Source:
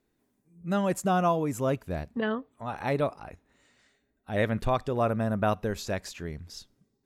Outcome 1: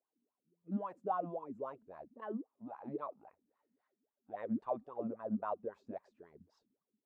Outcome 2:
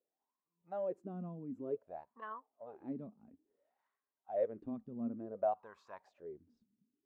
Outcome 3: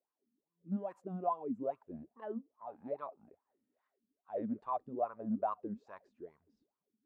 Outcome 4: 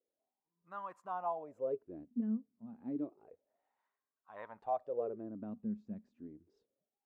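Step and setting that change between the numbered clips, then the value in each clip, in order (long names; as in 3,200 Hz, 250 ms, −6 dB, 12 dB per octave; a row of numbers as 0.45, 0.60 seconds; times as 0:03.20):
LFO wah, speed: 3.7, 0.56, 2.4, 0.3 Hertz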